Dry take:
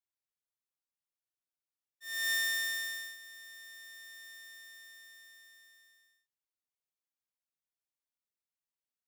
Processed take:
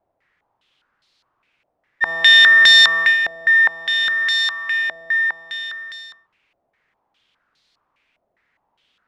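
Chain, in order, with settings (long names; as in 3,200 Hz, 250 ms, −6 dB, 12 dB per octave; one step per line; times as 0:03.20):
0:04.26–0:04.82: low shelf with overshoot 700 Hz −7.5 dB, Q 1.5
boost into a limiter +35.5 dB
low-pass on a step sequencer 4.9 Hz 670–4,200 Hz
level −6.5 dB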